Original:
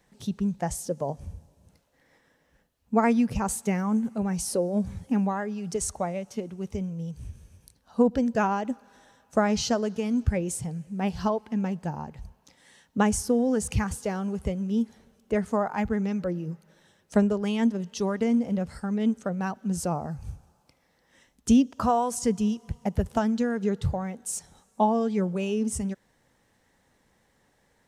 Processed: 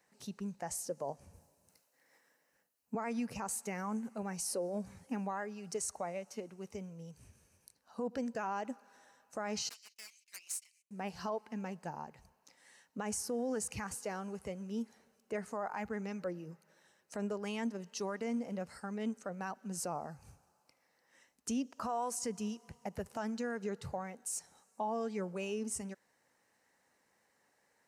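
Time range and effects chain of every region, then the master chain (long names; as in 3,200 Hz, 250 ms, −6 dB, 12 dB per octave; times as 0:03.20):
0:01.33–0:02.95: high-shelf EQ 7,600 Hz +10 dB + multiband upward and downward expander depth 40%
0:09.69–0:10.91: noise gate −35 dBFS, range −26 dB + Butterworth high-pass 2,100 Hz 72 dB per octave + highs frequency-modulated by the lows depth 0.68 ms
whole clip: high-pass filter 570 Hz 6 dB per octave; parametric band 3,400 Hz −10.5 dB 0.23 octaves; brickwall limiter −23.5 dBFS; level −4.5 dB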